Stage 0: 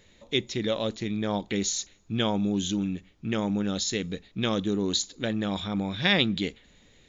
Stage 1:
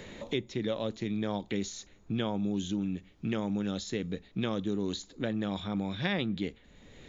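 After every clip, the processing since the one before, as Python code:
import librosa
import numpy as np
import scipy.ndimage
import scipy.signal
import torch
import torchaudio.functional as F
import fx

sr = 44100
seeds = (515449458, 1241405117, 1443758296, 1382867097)

y = fx.high_shelf(x, sr, hz=2400.0, db=-8.5)
y = fx.band_squash(y, sr, depth_pct=70)
y = y * 10.0 ** (-4.5 / 20.0)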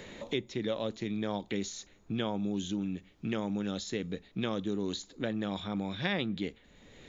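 y = fx.low_shelf(x, sr, hz=180.0, db=-4.5)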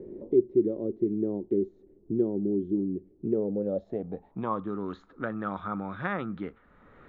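y = fx.filter_sweep_lowpass(x, sr, from_hz=370.0, to_hz=1300.0, start_s=3.22, end_s=4.78, q=7.1)
y = y * 10.0 ** (-1.0 / 20.0)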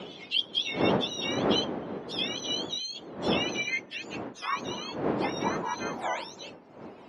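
y = fx.octave_mirror(x, sr, pivot_hz=1100.0)
y = fx.dmg_wind(y, sr, seeds[0], corner_hz=430.0, level_db=-35.0)
y = fx.bandpass_edges(y, sr, low_hz=210.0, high_hz=3300.0)
y = y * 10.0 ** (4.0 / 20.0)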